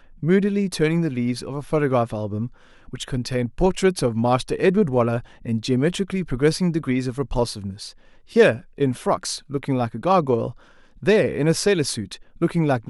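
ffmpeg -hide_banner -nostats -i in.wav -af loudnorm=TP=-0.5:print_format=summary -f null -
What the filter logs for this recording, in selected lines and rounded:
Input Integrated:    -21.8 LUFS
Input True Peak:      -3.0 dBTP
Input LRA:             2.0 LU
Input Threshold:     -32.2 LUFS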